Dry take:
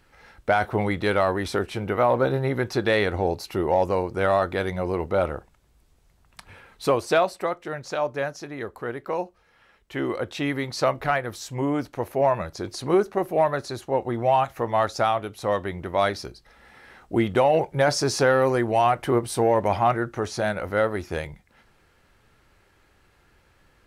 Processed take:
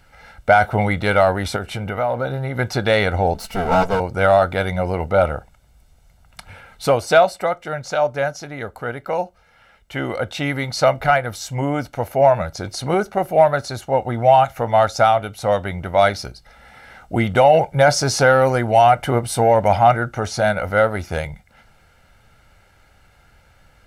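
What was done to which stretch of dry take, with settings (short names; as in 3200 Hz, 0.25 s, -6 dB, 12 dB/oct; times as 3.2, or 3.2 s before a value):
1.56–2.59 compressor 2:1, threshold -29 dBFS
3.34–4 minimum comb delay 4.5 ms
whole clip: comb 1.4 ms, depth 57%; gain +5 dB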